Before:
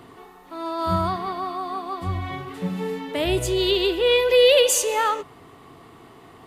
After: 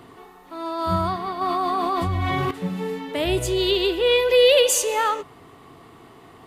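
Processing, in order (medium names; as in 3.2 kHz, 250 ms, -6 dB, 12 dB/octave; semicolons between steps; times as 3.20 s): 1.41–2.51 s: level flattener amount 100%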